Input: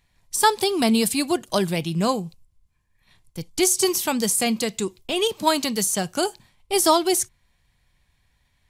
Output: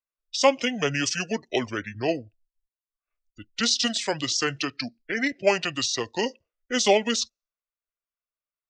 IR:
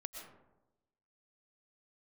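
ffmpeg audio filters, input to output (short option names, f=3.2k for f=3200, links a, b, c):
-filter_complex "[0:a]afftdn=nr=30:nf=-39,asetrate=27781,aresample=44100,atempo=1.5874,acrossover=split=280 6500:gain=0.141 1 0.126[a][b][c];[a][b][c]amix=inputs=3:normalize=0"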